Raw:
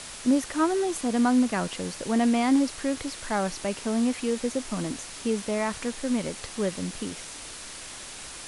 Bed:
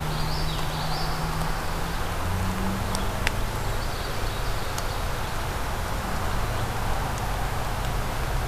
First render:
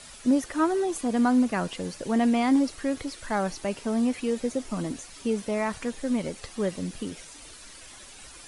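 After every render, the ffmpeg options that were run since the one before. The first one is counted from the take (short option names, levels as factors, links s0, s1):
-af "afftdn=nr=10:nf=-41"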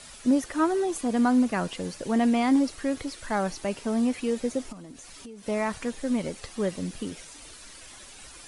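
-filter_complex "[0:a]asplit=3[s0][s1][s2];[s0]afade=t=out:st=4.71:d=0.02[s3];[s1]acompressor=threshold=0.00891:ratio=6:attack=3.2:release=140:knee=1:detection=peak,afade=t=in:st=4.71:d=0.02,afade=t=out:st=5.46:d=0.02[s4];[s2]afade=t=in:st=5.46:d=0.02[s5];[s3][s4][s5]amix=inputs=3:normalize=0"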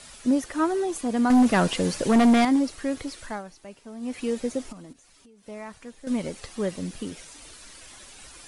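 -filter_complex "[0:a]asettb=1/sr,asplit=3[s0][s1][s2];[s0]atrim=end=1.304[s3];[s1]atrim=start=1.3:end=2.45,asetpts=PTS-STARTPTS,afade=t=in:d=0.004:c=qsin,afade=t=out:st=1.146:d=0.004:c=qsin,aeval=exprs='0.211*sin(PI/2*1.78*val(0)/0.211)':c=same[s4];[s2]atrim=start=2.446[s5];[s3][s4]acrossfade=d=0.004:c1=hsin:c2=qsin[s6];[s6][s5]acrossfade=d=0.004:c1=qsin:c2=hsin,asplit=5[s7][s8][s9][s10][s11];[s7]atrim=end=3.43,asetpts=PTS-STARTPTS,afade=t=out:st=3.21:d=0.22:silence=0.211349[s12];[s8]atrim=start=3.43:end=4,asetpts=PTS-STARTPTS,volume=0.211[s13];[s9]atrim=start=4:end=4.932,asetpts=PTS-STARTPTS,afade=t=in:d=0.22:silence=0.211349[s14];[s10]atrim=start=4.928:end=6.072,asetpts=PTS-STARTPTS,volume=0.282[s15];[s11]atrim=start=6.068[s16];[s12][s13][s14]concat=n=3:v=0:a=1[s17];[s17][s15]acrossfade=d=0.004:c1=hsin:c2=hsin[s18];[s18][s16]acrossfade=d=0.004:c1=hsin:c2=hsin"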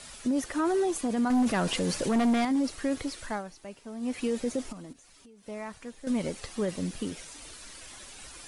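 -af "alimiter=limit=0.0944:level=0:latency=1:release=12"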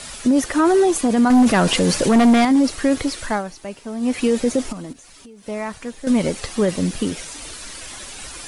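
-af "volume=3.76"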